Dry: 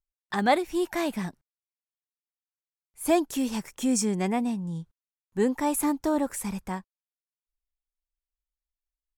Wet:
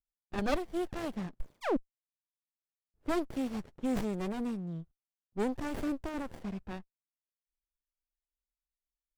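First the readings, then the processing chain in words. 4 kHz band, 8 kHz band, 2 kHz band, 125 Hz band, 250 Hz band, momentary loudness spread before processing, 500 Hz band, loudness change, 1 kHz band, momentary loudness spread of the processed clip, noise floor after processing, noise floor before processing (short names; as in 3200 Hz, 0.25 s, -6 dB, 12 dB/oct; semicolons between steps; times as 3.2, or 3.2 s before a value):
-10.0 dB, -20.0 dB, -8.5 dB, -6.0 dB, -7.5 dB, 11 LU, -7.5 dB, -8.5 dB, -10.5 dB, 11 LU, under -85 dBFS, under -85 dBFS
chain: low-pass opened by the level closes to 410 Hz, open at -24 dBFS; painted sound fall, 1.4–1.77, 230–12000 Hz -20 dBFS; running maximum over 33 samples; gain -5 dB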